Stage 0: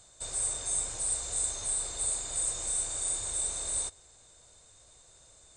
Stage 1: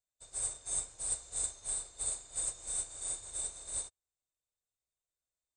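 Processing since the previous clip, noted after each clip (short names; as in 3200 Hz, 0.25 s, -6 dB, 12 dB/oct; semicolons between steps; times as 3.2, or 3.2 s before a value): upward expander 2.5:1, over -53 dBFS; gain -2 dB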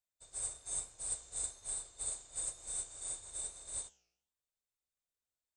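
flange 1.1 Hz, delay 7.9 ms, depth 9.9 ms, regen +88%; gain +1 dB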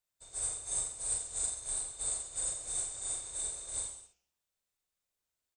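reverse bouncing-ball echo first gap 40 ms, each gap 1.1×, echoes 5; gain +3 dB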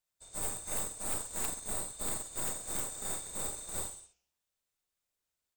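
tracing distortion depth 0.084 ms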